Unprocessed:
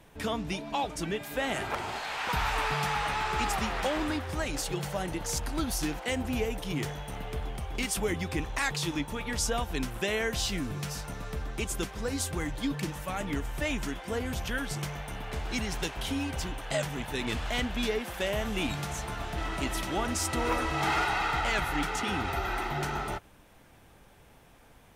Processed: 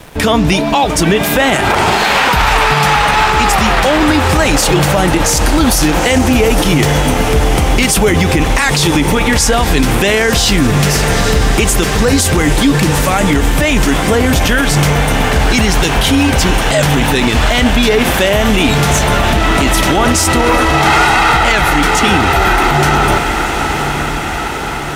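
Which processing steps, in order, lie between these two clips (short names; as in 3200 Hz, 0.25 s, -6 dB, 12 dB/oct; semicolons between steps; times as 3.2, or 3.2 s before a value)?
crossover distortion -59.5 dBFS; on a send: diffused feedback echo 0.87 s, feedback 68%, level -13 dB; on the sum: maximiser +27.5 dB; gain -1 dB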